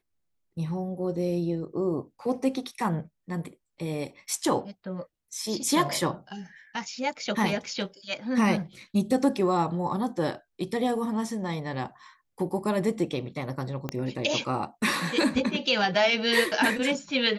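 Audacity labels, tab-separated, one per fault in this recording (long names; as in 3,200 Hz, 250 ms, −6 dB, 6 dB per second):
13.890000	13.890000	click −16 dBFS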